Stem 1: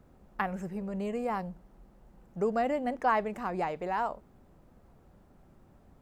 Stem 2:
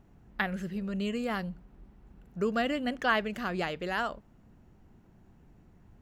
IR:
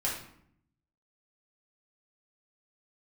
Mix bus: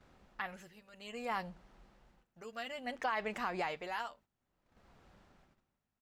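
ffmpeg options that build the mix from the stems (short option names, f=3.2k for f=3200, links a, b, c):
-filter_complex "[0:a]lowpass=4.5k,tremolo=f=0.59:d=0.89,volume=2.5dB[a];[1:a]aeval=exprs='val(0)+0.00562*(sin(2*PI*50*n/s)+sin(2*PI*2*50*n/s)/2+sin(2*PI*3*50*n/s)/3+sin(2*PI*4*50*n/s)/4+sin(2*PI*5*50*n/s)/5)':c=same,highpass=f=350:p=1,adelay=8.4,volume=-15dB[b];[a][b]amix=inputs=2:normalize=0,agate=range=-10dB:threshold=-59dB:ratio=16:detection=peak,tiltshelf=f=1.2k:g=-9,alimiter=level_in=1dB:limit=-24dB:level=0:latency=1:release=92,volume=-1dB"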